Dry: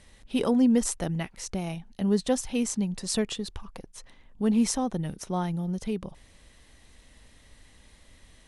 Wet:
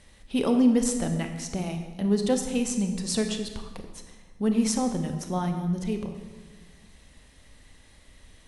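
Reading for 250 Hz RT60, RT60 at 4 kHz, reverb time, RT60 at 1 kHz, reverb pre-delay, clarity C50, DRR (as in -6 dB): 1.8 s, 1.1 s, 1.4 s, 1.3 s, 26 ms, 7.0 dB, 5.5 dB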